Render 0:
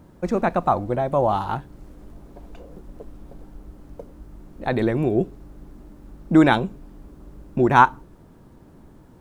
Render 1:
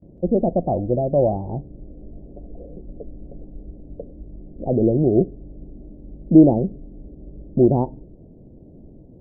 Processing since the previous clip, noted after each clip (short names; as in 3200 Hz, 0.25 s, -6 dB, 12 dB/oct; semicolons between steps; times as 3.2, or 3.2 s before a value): steep low-pass 660 Hz 48 dB/oct; gate with hold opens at -42 dBFS; gain +4 dB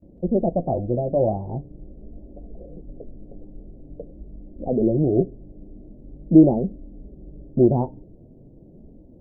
flange 0.44 Hz, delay 3.2 ms, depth 7 ms, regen -42%; gain +1.5 dB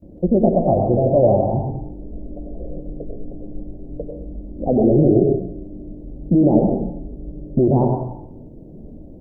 limiter -14.5 dBFS, peak gain reduction 12 dB; reverb RT60 0.75 s, pre-delay 87 ms, DRR 2.5 dB; gain +6.5 dB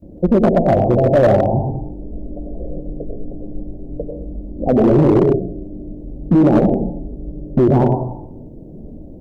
overloaded stage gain 10.5 dB; gain +3.5 dB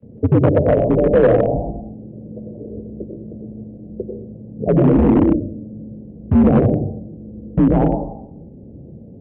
mistuned SSB -85 Hz 160–3100 Hz